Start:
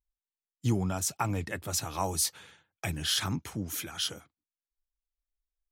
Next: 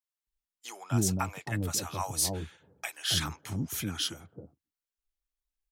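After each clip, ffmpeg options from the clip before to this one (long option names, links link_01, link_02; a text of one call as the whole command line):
ffmpeg -i in.wav -filter_complex "[0:a]acrossover=split=640[link_01][link_02];[link_01]adelay=270[link_03];[link_03][link_02]amix=inputs=2:normalize=0" out.wav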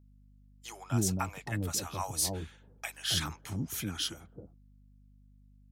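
ffmpeg -i in.wav -af "aeval=exprs='val(0)+0.00158*(sin(2*PI*50*n/s)+sin(2*PI*2*50*n/s)/2+sin(2*PI*3*50*n/s)/3+sin(2*PI*4*50*n/s)/4+sin(2*PI*5*50*n/s)/5)':channel_layout=same,volume=-2dB" out.wav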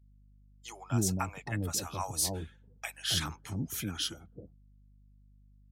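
ffmpeg -i in.wav -af "afftdn=noise_reduction=14:noise_floor=-54" out.wav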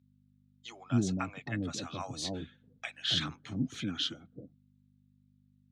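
ffmpeg -i in.wav -af "highpass=130,equalizer=frequency=130:width_type=q:width=4:gain=5,equalizer=frequency=260:width_type=q:width=4:gain=8,equalizer=frequency=410:width_type=q:width=4:gain=-3,equalizer=frequency=910:width_type=q:width=4:gain=-9,equalizer=frequency=3700:width_type=q:width=4:gain=6,equalizer=frequency=5300:width_type=q:width=4:gain=-8,lowpass=frequency=5700:width=0.5412,lowpass=frequency=5700:width=1.3066" out.wav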